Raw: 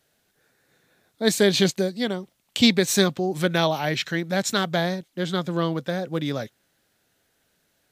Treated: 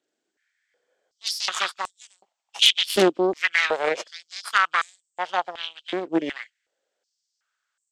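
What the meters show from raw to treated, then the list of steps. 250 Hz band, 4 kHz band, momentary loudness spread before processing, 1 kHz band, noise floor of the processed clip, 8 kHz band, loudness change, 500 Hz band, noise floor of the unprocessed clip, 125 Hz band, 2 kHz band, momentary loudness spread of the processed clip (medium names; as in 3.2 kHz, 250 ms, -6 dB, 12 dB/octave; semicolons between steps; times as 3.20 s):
-6.5 dB, +3.0 dB, 10 LU, +3.5 dB, -81 dBFS, -4.0 dB, +0.5 dB, -3.0 dB, -70 dBFS, -16.5 dB, +3.5 dB, 17 LU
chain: knee-point frequency compression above 2.4 kHz 1.5:1; Chebyshev shaper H 3 -13 dB, 6 -7 dB, 8 -20 dB, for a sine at -5.5 dBFS; step-sequenced high-pass 2.7 Hz 320–7900 Hz; trim -3 dB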